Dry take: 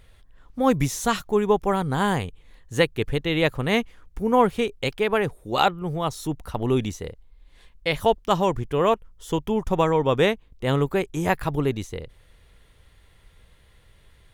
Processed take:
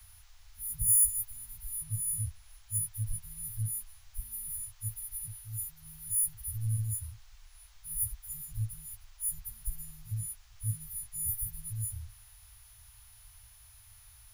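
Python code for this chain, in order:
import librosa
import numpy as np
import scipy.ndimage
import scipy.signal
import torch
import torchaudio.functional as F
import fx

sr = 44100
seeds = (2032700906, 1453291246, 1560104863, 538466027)

y = fx.freq_snap(x, sr, grid_st=6)
y = scipy.signal.sosfilt(scipy.signal.cheby1(5, 1.0, [110.0, 9100.0], 'bandstop', fs=sr, output='sos'), y)
y = fx.dmg_noise_band(y, sr, seeds[0], low_hz=700.0, high_hz=7100.0, level_db=-66.0)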